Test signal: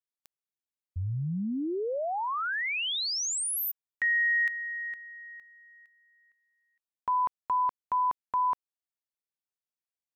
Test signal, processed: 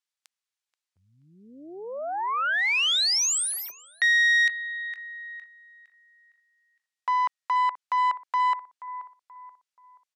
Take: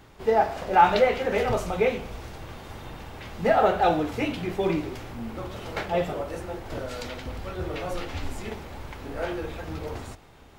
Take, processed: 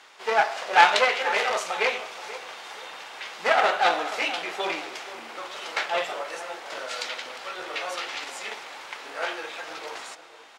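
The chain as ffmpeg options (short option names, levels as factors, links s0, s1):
-filter_complex "[0:a]aeval=exprs='0.562*(cos(1*acos(clip(val(0)/0.562,-1,1)))-cos(1*PI/2))+0.126*(cos(4*acos(clip(val(0)/0.562,-1,1)))-cos(4*PI/2))':c=same,tiltshelf=f=640:g=-9,asplit=2[s0][s1];[s1]adelay=480,lowpass=f=1600:p=1,volume=0.2,asplit=2[s2][s3];[s3]adelay=480,lowpass=f=1600:p=1,volume=0.42,asplit=2[s4][s5];[s5]adelay=480,lowpass=f=1600:p=1,volume=0.42,asplit=2[s6][s7];[s7]adelay=480,lowpass=f=1600:p=1,volume=0.42[s8];[s2][s4][s6][s8]amix=inputs=4:normalize=0[s9];[s0][s9]amix=inputs=2:normalize=0,aeval=exprs='clip(val(0),-1,0.0841)':c=same,highpass=450,lowpass=7900"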